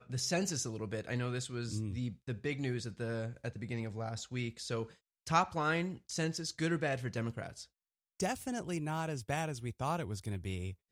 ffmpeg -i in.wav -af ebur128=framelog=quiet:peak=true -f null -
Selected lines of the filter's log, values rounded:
Integrated loudness:
  I:         -37.1 LUFS
  Threshold: -47.3 LUFS
Loudness range:
  LRA:         3.8 LU
  Threshold: -57.4 LUFS
  LRA low:   -39.3 LUFS
  LRA high:  -35.6 LUFS
True peak:
  Peak:      -14.7 dBFS